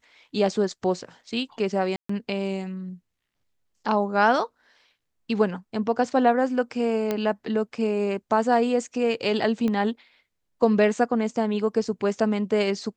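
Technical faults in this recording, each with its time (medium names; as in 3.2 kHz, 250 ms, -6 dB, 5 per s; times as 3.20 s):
1.96–2.09 s: dropout 134 ms
7.11 s: pop -12 dBFS
9.68 s: pop -16 dBFS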